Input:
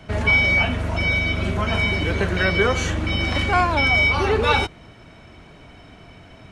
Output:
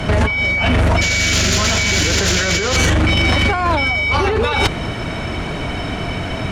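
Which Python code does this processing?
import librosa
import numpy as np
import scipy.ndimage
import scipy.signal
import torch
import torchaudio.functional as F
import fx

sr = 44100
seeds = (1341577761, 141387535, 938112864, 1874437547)

y = fx.spec_paint(x, sr, seeds[0], shape='noise', start_s=1.01, length_s=1.76, low_hz=1300.0, high_hz=7400.0, level_db=-24.0)
y = fx.over_compress(y, sr, threshold_db=-28.0, ratio=-1.0)
y = fx.fold_sine(y, sr, drive_db=10, ceiling_db=-9.0)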